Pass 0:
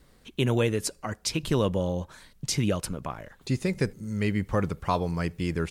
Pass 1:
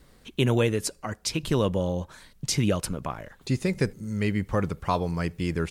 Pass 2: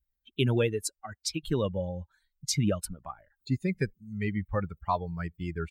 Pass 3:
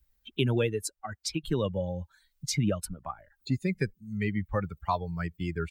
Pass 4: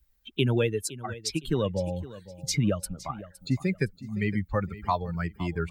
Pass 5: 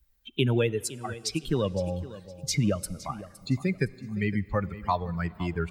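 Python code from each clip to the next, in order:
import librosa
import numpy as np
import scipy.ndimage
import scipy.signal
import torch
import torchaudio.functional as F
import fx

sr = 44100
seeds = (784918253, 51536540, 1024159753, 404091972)

y1 = fx.rider(x, sr, range_db=5, speed_s=2.0)
y2 = fx.bin_expand(y1, sr, power=2.0)
y3 = fx.band_squash(y2, sr, depth_pct=40)
y4 = fx.echo_feedback(y3, sr, ms=513, feedback_pct=29, wet_db=-16.5)
y4 = y4 * librosa.db_to_amplitude(2.0)
y5 = fx.rev_plate(y4, sr, seeds[0], rt60_s=2.8, hf_ratio=0.95, predelay_ms=0, drr_db=20.0)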